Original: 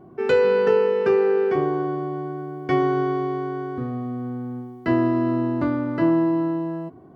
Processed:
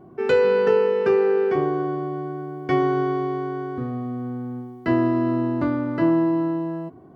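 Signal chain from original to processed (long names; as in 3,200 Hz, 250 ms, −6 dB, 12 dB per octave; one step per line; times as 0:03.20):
0:01.70–0:02.44: notch filter 880 Hz, Q 15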